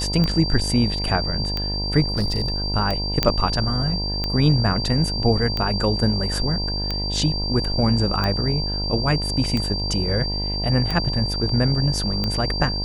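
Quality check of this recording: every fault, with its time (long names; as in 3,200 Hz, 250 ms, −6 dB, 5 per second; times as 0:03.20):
mains buzz 50 Hz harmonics 20 −27 dBFS
scratch tick 45 rpm −11 dBFS
whistle 4,700 Hz −26 dBFS
0:02.08–0:02.72: clipping −17 dBFS
0:03.23: click −3 dBFS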